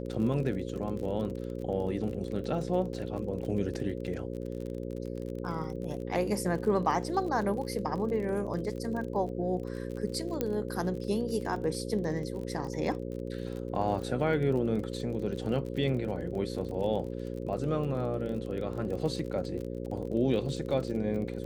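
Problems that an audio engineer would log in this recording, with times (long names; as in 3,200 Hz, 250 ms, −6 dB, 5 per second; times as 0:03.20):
mains buzz 60 Hz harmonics 9 −37 dBFS
surface crackle 34 per second −37 dBFS
0:10.41: click −16 dBFS
0:12.44: drop-out 4.5 ms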